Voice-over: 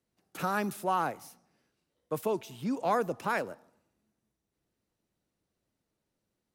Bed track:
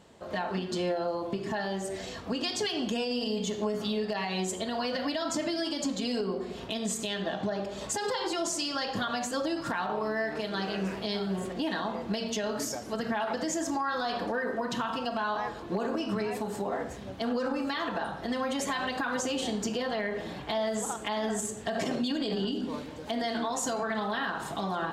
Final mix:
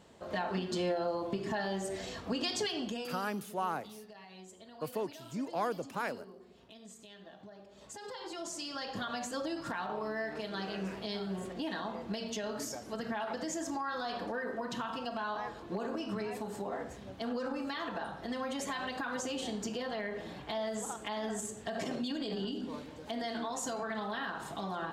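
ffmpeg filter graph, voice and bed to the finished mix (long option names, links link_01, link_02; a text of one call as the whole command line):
ffmpeg -i stem1.wav -i stem2.wav -filter_complex "[0:a]adelay=2700,volume=-5.5dB[link_01];[1:a]volume=12dB,afade=type=out:start_time=2.56:duration=0.75:silence=0.125893,afade=type=in:start_time=7.67:duration=1.48:silence=0.188365[link_02];[link_01][link_02]amix=inputs=2:normalize=0" out.wav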